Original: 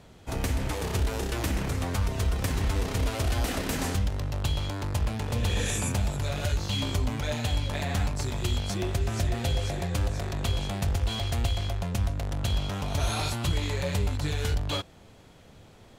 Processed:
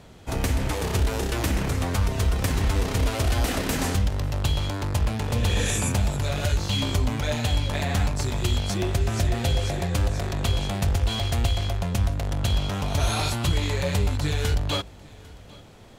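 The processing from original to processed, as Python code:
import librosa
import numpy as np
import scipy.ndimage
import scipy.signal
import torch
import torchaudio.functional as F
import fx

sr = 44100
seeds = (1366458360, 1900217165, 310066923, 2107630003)

y = x + 10.0 ** (-23.5 / 20.0) * np.pad(x, (int(799 * sr / 1000.0), 0))[:len(x)]
y = F.gain(torch.from_numpy(y), 4.0).numpy()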